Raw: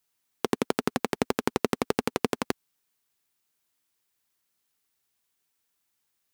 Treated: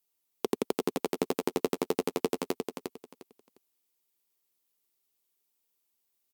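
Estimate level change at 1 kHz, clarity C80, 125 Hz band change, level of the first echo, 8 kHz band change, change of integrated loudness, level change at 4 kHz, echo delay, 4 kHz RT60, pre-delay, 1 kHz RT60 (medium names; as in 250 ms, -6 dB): -5.5 dB, no reverb, -6.5 dB, -5.5 dB, -3.0 dB, -3.0 dB, -4.5 dB, 354 ms, no reverb, no reverb, no reverb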